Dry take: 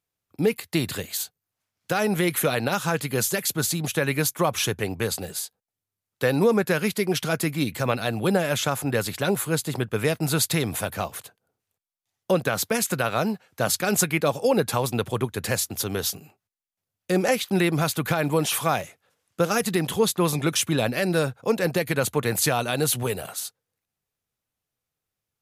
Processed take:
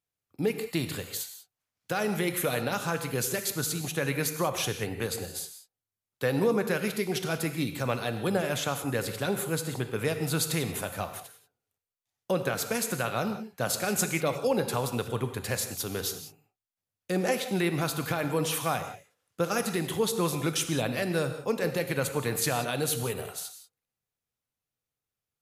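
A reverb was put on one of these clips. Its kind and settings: non-linear reverb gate 0.21 s flat, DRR 7.5 dB; gain -6 dB

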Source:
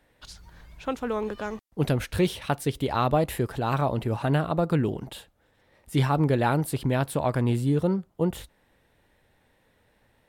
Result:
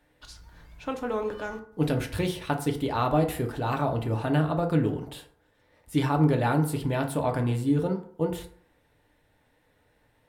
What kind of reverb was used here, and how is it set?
FDN reverb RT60 0.57 s, low-frequency decay 0.9×, high-frequency decay 0.5×, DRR 3.5 dB; gain -3 dB

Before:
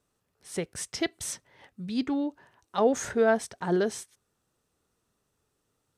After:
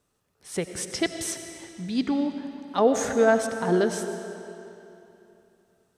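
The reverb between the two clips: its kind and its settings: digital reverb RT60 3 s, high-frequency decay 0.85×, pre-delay 50 ms, DRR 7 dB; gain +3 dB

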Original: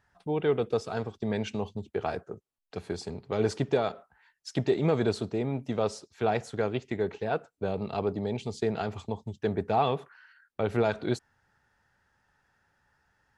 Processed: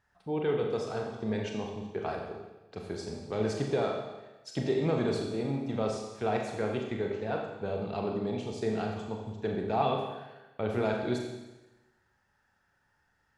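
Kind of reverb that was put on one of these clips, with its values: Schroeder reverb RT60 1.1 s, combs from 29 ms, DRR 1 dB; gain -4.5 dB

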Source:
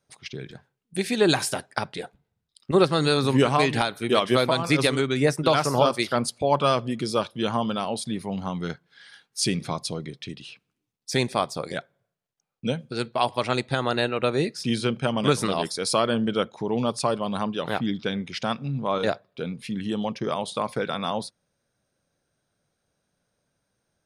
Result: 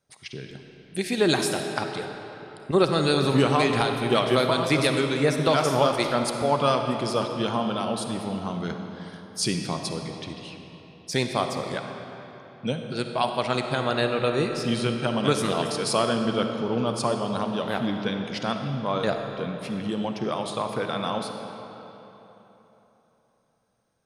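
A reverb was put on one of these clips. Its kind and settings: digital reverb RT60 3.6 s, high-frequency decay 0.7×, pre-delay 15 ms, DRR 4.5 dB; gain -1.5 dB

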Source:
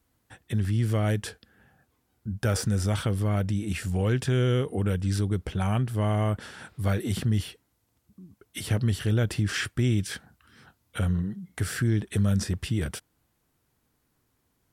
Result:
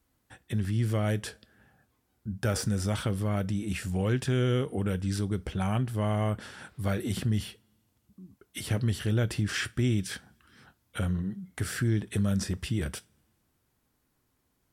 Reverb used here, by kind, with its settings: two-slope reverb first 0.23 s, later 1.8 s, from -27 dB, DRR 14.5 dB; gain -2 dB

